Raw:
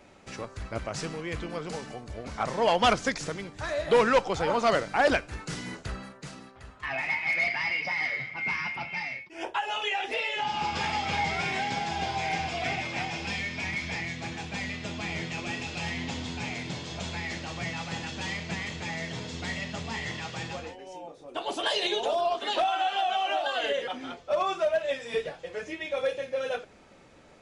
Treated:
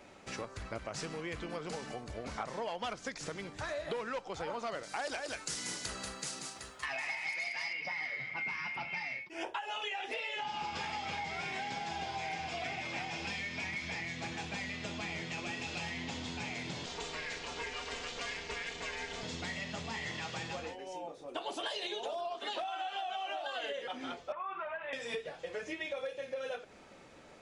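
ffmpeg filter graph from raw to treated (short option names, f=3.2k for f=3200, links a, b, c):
-filter_complex "[0:a]asettb=1/sr,asplit=3[a][b][c];[a]atrim=end=4.834[d];[b]atrim=start=4.83:end=7.73,asetpts=PTS-STARTPTS,afade=t=in:d=0.004:c=qsin,afade=t=out:st=2.896:d=0.004:c=qsin,bass=f=250:g=-6,treble=f=4k:g=14,aecho=1:1:186:0.473,atrim=end_sample=127890[e];[c]atrim=start=7.726[f];[d][e]acrossfade=d=0.004:c1=hsin:c2=qsin[g];[g][f]acrossfade=d=0.004:c1=qsin:c2=hsin,asettb=1/sr,asplit=3[h][i][j];[h]atrim=end=16.864[k];[i]atrim=start=16.86:end=19.23,asetpts=PTS-STARTPTS,afade=t=in:d=0.004:c=qsin,afade=t=out:st=2.366:d=0.004:c=qsin,lowshelf=f=200:g=-7.5,aeval=exprs='val(0)*sin(2*PI*240*n/s)':c=same,aecho=1:1:4.3:0.61,atrim=end_sample=104517[l];[j]atrim=start=19.226[m];[k][l]acrossfade=d=0.004:c1=hsin:c2=qsin[n];[n][m]acrossfade=d=0.004:c1=qsin:c2=hsin,asettb=1/sr,asplit=3[o][p][q];[o]atrim=end=24.324[r];[p]atrim=start=24.32:end=24.93,asetpts=PTS-STARTPTS,afade=t=in:d=0.004:c=qsin,afade=t=out:st=0.606:d=0.004:c=qsin,lowshelf=f=760:t=q:w=3:g=-6.5,acompressor=threshold=-34dB:ratio=3:attack=3.2:release=140:knee=1:detection=peak,lowpass=f=2.4k:w=0.5412,lowpass=f=2.4k:w=1.3066[s];[q]atrim=start=24.926[t];[r][s]acrossfade=d=0.004:c1=hsin:c2=qsin[u];[u][t]acrossfade=d=0.004:c1=qsin:c2=hsin,acompressor=threshold=-35dB:ratio=10,lowshelf=f=180:g=-5.5"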